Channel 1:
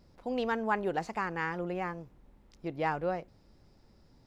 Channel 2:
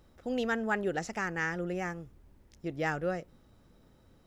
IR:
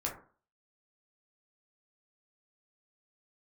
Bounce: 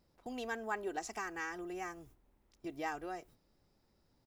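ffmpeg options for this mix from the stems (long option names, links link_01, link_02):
-filter_complex "[0:a]lowshelf=frequency=230:gain=-6,volume=-9dB[link_01];[1:a]agate=range=-17dB:threshold=-51dB:ratio=16:detection=peak,acompressor=threshold=-41dB:ratio=2,crystalizer=i=3:c=0,adelay=2.5,volume=-6dB[link_02];[link_01][link_02]amix=inputs=2:normalize=0"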